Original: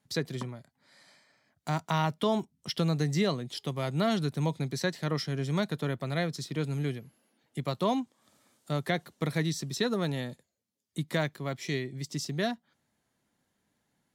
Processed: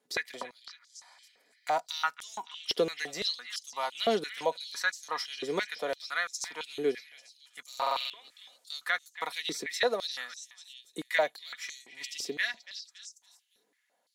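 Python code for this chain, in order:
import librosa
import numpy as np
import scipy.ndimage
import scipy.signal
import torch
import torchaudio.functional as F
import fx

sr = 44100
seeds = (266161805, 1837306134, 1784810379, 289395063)

y = x + 0.43 * np.pad(x, (int(4.1 * sr / 1000.0), 0))[:len(x)]
y = fx.echo_stepped(y, sr, ms=281, hz=2500.0, octaves=0.7, feedback_pct=70, wet_db=-8.0)
y = fx.buffer_glitch(y, sr, at_s=(7.68,), block=2048, repeats=8)
y = fx.filter_held_highpass(y, sr, hz=5.9, low_hz=410.0, high_hz=6400.0)
y = y * 10.0 ** (-1.5 / 20.0)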